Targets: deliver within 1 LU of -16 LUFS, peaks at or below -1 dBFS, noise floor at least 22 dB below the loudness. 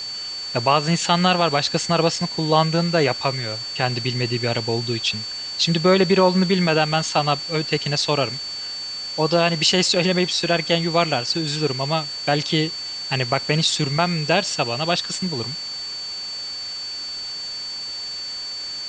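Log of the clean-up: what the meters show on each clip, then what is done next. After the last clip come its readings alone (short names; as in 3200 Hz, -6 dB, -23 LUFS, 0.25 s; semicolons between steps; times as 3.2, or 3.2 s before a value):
steady tone 4500 Hz; tone level -28 dBFS; noise floor -31 dBFS; noise floor target -43 dBFS; loudness -21.0 LUFS; peak -3.0 dBFS; loudness target -16.0 LUFS
-> notch 4500 Hz, Q 30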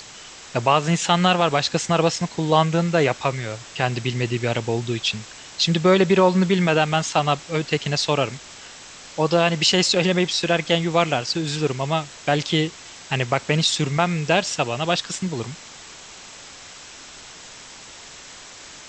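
steady tone none; noise floor -42 dBFS; noise floor target -43 dBFS
-> denoiser 6 dB, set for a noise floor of -42 dBFS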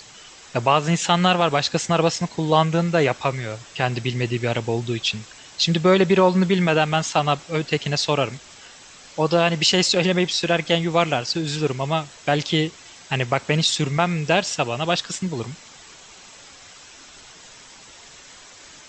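noise floor -45 dBFS; loudness -21.0 LUFS; peak -3.0 dBFS; loudness target -16.0 LUFS
-> gain +5 dB; limiter -1 dBFS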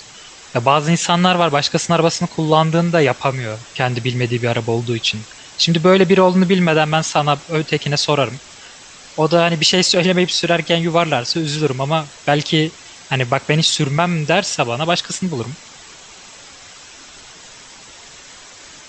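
loudness -16.5 LUFS; peak -1.0 dBFS; noise floor -40 dBFS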